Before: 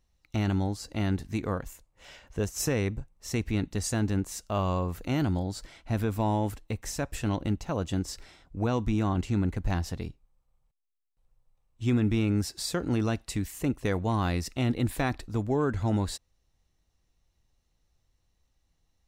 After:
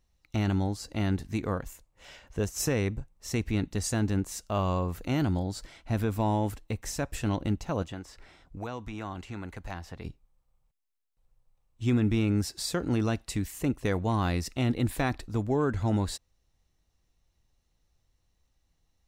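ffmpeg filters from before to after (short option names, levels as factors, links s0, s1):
-filter_complex "[0:a]asettb=1/sr,asplit=3[s0][s1][s2];[s0]atrim=end=7.824[s3];[s1]atrim=start=7.82:end=10.05,asetpts=PTS-STARTPTS,afade=t=in:d=0.004:c=qsin,afade=t=out:st=2.226:d=0.004:c=qsin,acrossover=split=550|2800[s4][s5][s6];[s4]acompressor=threshold=0.01:ratio=4[s7];[s5]acompressor=threshold=0.0141:ratio=4[s8];[s6]acompressor=threshold=0.00158:ratio=4[s9];[s7][s8][s9]amix=inputs=3:normalize=0[s10];[s2]atrim=start=10.046[s11];[s3][s10]acrossfade=d=0.004:c1=hsin:c2=qsin[s12];[s12][s11]acrossfade=d=0.004:c1=qsin:c2=hsin"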